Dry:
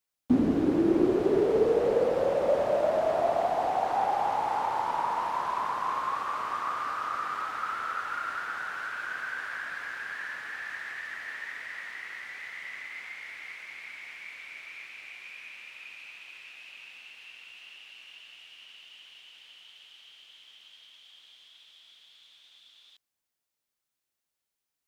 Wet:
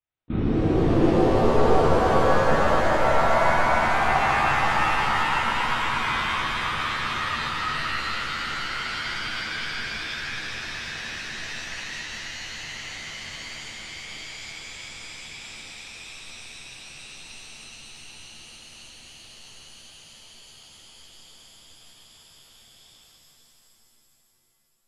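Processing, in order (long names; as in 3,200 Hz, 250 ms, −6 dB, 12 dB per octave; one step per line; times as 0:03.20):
in parallel at −10.5 dB: sample-and-hold swept by an LFO 24×, swing 100% 3.9 Hz
on the sum: linear-prediction vocoder at 8 kHz whisper
reverb with rising layers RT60 3.6 s, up +7 semitones, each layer −2 dB, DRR −9 dB
level −8.5 dB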